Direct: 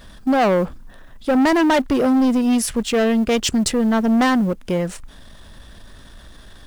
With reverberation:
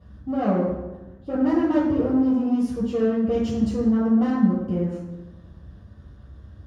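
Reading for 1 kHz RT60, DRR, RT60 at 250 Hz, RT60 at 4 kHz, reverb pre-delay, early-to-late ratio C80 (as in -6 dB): 1.0 s, -7.5 dB, 1.3 s, 0.75 s, 3 ms, 4.0 dB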